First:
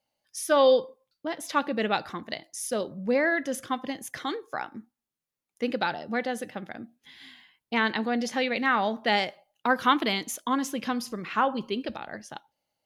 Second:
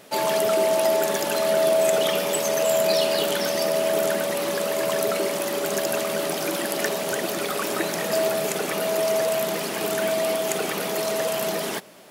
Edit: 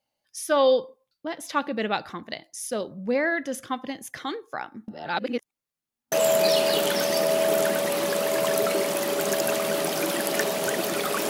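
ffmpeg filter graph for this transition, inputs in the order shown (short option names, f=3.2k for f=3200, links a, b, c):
-filter_complex "[0:a]apad=whole_dur=11.29,atrim=end=11.29,asplit=2[a][b];[a]atrim=end=4.882[c];[b]atrim=start=4.878:end=6.122,asetpts=PTS-STARTPTS,areverse[d];[1:a]atrim=start=2.568:end=7.74[e];[c][d]acrossfade=d=0.004:c1=hsin:c2=hsin[f];[f][e]acrossfade=d=0.004:c1=hsin:c2=hsin"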